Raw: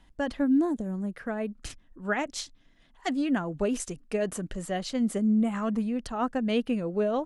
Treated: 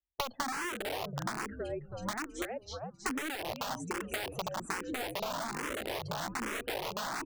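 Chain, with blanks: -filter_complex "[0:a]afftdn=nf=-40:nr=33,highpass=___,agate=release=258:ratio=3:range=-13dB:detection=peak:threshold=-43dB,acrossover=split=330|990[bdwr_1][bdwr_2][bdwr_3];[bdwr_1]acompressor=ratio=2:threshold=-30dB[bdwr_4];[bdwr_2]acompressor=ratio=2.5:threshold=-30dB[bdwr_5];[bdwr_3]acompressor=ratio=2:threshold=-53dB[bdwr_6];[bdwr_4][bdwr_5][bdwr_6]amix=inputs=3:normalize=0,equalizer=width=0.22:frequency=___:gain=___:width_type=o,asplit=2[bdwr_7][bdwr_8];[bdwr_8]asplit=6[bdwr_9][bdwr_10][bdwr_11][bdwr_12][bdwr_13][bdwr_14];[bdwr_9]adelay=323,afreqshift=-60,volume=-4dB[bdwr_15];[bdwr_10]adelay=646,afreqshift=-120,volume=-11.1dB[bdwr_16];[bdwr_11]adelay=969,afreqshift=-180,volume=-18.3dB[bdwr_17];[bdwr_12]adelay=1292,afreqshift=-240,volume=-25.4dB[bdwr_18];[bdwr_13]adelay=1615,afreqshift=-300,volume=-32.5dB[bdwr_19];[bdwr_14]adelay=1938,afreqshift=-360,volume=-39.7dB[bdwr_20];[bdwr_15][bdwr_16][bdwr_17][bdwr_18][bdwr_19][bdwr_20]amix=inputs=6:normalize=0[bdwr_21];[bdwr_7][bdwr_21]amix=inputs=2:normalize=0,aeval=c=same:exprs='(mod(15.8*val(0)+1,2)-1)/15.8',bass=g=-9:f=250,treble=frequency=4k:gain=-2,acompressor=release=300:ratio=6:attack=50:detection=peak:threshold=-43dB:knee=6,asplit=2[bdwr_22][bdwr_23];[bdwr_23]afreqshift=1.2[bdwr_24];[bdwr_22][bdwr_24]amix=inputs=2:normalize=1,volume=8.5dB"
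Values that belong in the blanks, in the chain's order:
99, 370, 9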